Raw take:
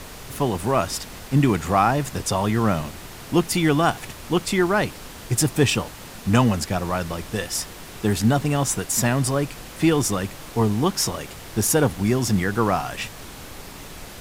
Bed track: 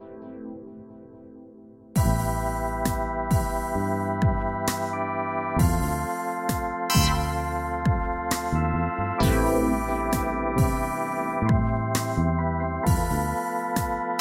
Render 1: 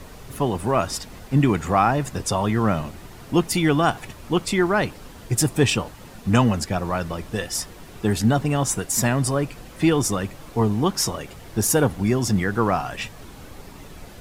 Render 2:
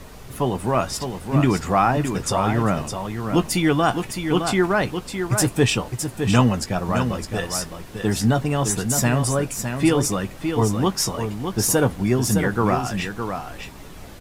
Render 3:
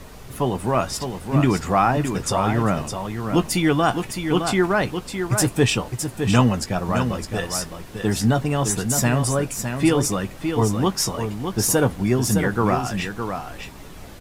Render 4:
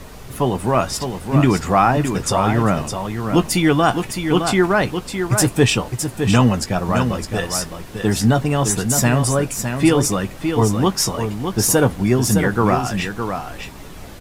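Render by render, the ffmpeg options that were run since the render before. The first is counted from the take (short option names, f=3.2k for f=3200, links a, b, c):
-af "afftdn=nr=8:nf=-39"
-filter_complex "[0:a]asplit=2[a][b];[b]adelay=16,volume=-11.5dB[c];[a][c]amix=inputs=2:normalize=0,aecho=1:1:611:0.447"
-af anull
-af "volume=3.5dB,alimiter=limit=-1dB:level=0:latency=1"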